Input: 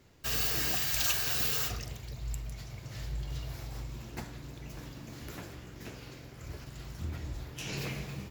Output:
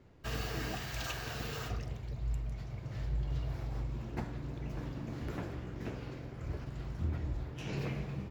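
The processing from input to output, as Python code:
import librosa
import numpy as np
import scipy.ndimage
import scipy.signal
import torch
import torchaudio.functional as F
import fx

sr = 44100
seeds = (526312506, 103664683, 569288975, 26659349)

y = fx.lowpass(x, sr, hz=1100.0, slope=6)
y = fx.rider(y, sr, range_db=3, speed_s=2.0)
y = F.gain(torch.from_numpy(y), 2.5).numpy()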